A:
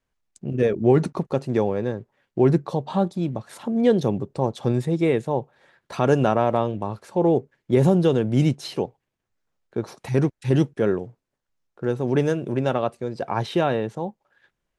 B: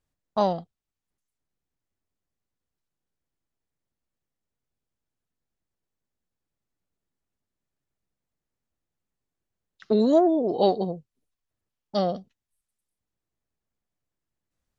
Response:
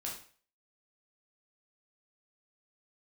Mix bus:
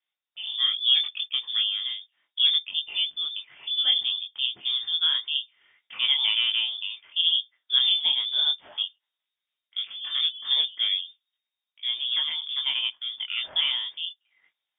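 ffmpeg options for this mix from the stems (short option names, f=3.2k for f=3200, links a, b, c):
-filter_complex "[0:a]highpass=150,volume=-1dB,asplit=2[a][b];[1:a]dynaudnorm=f=370:g=3:m=9dB,alimiter=limit=-12.5dB:level=0:latency=1,volume=-12.5dB[c];[b]apad=whole_len=652189[d];[c][d]sidechaincompress=threshold=-28dB:ratio=8:attack=21:release=357[e];[a][e]amix=inputs=2:normalize=0,lowpass=f=3.1k:t=q:w=0.5098,lowpass=f=3.1k:t=q:w=0.6013,lowpass=f=3.1k:t=q:w=0.9,lowpass=f=3.1k:t=q:w=2.563,afreqshift=-3700,flanger=delay=19.5:depth=4.1:speed=0.33,highpass=f=100:p=1"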